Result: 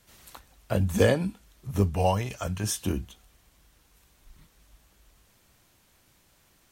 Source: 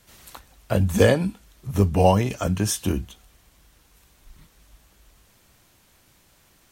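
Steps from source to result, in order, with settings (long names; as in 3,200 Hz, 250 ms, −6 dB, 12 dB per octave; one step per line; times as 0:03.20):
0:01.91–0:02.64: parametric band 270 Hz −8.5 dB 1.6 octaves
level −4.5 dB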